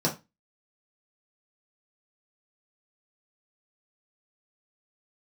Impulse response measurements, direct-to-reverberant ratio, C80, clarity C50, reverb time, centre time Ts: -4.0 dB, 20.0 dB, 12.0 dB, 0.25 s, 17 ms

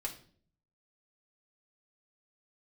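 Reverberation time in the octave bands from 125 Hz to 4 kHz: 0.85 s, 0.75 s, 0.60 s, 0.40 s, 0.40 s, 0.40 s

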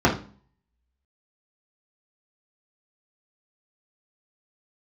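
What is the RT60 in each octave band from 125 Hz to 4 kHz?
0.55 s, 0.55 s, 0.40 s, 0.40 s, 0.35 s, 0.35 s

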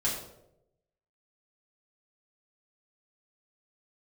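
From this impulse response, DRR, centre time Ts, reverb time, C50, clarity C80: -6.5 dB, 42 ms, 0.85 s, 4.5 dB, 6.5 dB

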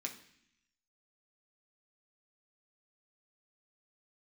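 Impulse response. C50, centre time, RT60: 11.0 dB, 15 ms, 0.65 s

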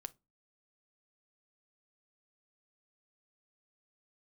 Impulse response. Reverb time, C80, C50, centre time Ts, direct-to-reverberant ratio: no single decay rate, 35.0 dB, 24.5 dB, 2 ms, 12.0 dB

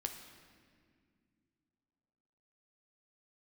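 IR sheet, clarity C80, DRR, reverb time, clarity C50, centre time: 8.5 dB, 4.5 dB, no single decay rate, 7.5 dB, 31 ms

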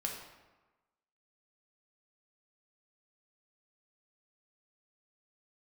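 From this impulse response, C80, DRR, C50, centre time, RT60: 6.5 dB, -0.5 dB, 4.0 dB, 43 ms, 1.2 s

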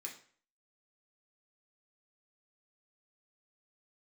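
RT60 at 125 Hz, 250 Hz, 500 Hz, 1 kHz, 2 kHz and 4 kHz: 0.45 s, 0.45 s, 0.50 s, 0.50 s, 0.45 s, 0.40 s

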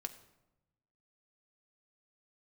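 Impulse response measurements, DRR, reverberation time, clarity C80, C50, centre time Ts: 6.5 dB, 0.95 s, 15.0 dB, 13.0 dB, 8 ms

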